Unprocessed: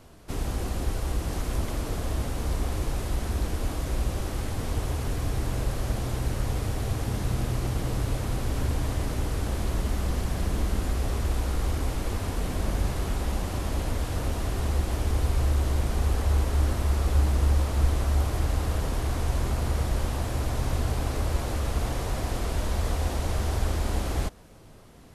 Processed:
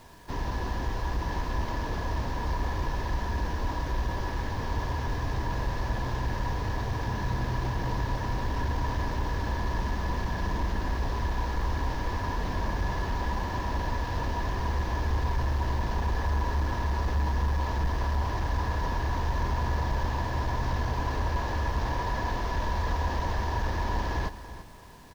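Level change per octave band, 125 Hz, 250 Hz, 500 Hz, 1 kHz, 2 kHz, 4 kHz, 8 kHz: −3.0, −2.5, −2.0, +5.5, +3.5, −2.5, −10.0 decibels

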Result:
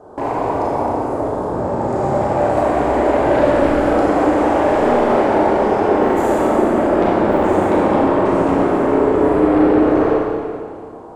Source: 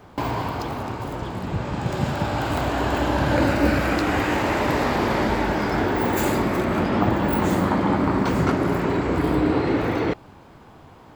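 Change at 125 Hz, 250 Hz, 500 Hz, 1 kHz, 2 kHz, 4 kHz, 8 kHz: −1.5 dB, +6.0 dB, +10.5 dB, +7.5 dB, +0.5 dB, −4.0 dB, can't be measured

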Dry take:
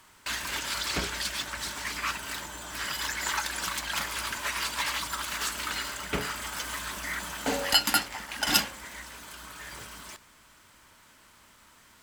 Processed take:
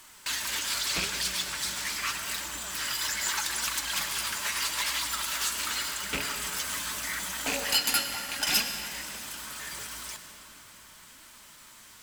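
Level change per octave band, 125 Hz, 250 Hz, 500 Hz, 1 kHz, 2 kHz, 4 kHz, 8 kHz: −4.5, −4.5, −4.0, −3.0, −0.5, +1.0, +4.0 decibels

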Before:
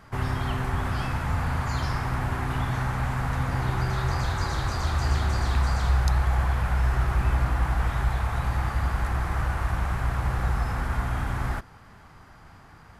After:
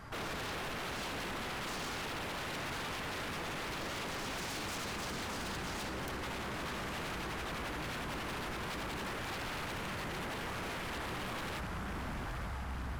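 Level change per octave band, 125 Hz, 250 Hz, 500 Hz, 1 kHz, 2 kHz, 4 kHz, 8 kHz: −20.0, −8.0, −5.0, −10.0, −6.0, −1.0, −2.0 decibels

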